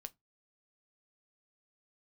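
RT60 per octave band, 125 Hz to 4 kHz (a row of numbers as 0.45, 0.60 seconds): 0.25, 0.25, 0.20, 0.15, 0.15, 0.15 seconds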